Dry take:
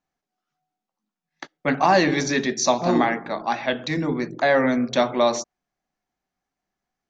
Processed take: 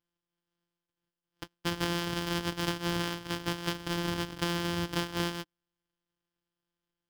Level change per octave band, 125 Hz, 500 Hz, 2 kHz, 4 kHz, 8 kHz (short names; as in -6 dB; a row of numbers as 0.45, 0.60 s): -3.5 dB, -16.0 dB, -11.0 dB, -4.0 dB, n/a